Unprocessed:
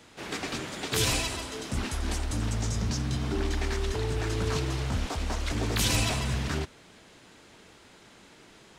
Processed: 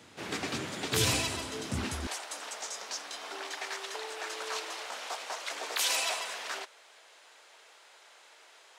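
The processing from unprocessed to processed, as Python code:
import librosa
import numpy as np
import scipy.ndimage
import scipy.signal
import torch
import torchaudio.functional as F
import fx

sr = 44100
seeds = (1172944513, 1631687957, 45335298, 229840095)

y = fx.highpass(x, sr, hz=fx.steps((0.0, 77.0), (2.07, 550.0)), slope=24)
y = F.gain(torch.from_numpy(y), -1.0).numpy()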